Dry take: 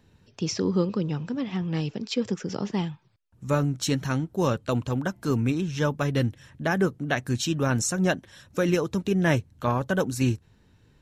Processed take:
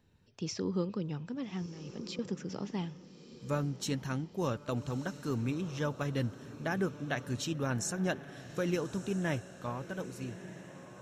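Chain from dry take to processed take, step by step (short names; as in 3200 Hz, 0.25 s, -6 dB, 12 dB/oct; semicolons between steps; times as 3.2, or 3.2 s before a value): ending faded out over 2.19 s; 1.66–2.19 negative-ratio compressor -35 dBFS, ratio -1; diffused feedback echo 1.279 s, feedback 46%, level -13.5 dB; gain -9 dB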